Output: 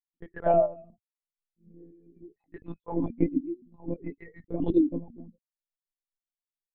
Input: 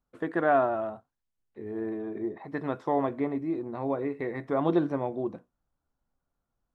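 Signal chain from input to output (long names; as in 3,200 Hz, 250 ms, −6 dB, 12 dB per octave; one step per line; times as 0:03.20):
spectral dynamics exaggerated over time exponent 3
parametric band 1,100 Hz −3.5 dB 0.7 octaves
hollow resonant body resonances 280/610 Hz, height 14 dB, ringing for 35 ms
flanger swept by the level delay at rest 3.6 ms, full sweep at −21 dBFS
one-pitch LPC vocoder at 8 kHz 170 Hz
level −1.5 dB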